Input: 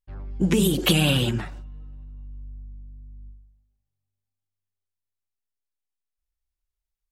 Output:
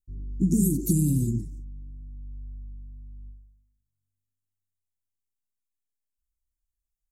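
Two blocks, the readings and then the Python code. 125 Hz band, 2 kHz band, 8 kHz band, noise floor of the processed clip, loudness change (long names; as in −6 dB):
−1.0 dB, below −40 dB, −1.0 dB, −85 dBFS, −3.0 dB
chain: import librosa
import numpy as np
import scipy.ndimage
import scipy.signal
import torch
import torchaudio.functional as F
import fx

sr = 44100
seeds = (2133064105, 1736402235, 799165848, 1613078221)

y = scipy.signal.sosfilt(scipy.signal.ellip(3, 1.0, 40, [300.0, 6700.0], 'bandstop', fs=sr, output='sos'), x)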